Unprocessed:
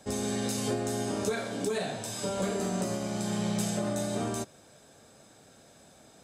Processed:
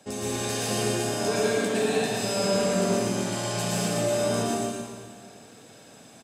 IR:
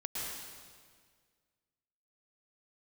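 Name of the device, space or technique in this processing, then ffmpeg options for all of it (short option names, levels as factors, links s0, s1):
PA in a hall: -filter_complex "[0:a]highpass=110,equalizer=f=2700:t=o:w=0.22:g=7,aecho=1:1:117:0.501[s0];[1:a]atrim=start_sample=2205[s1];[s0][s1]afir=irnorm=-1:irlink=0,volume=1.41"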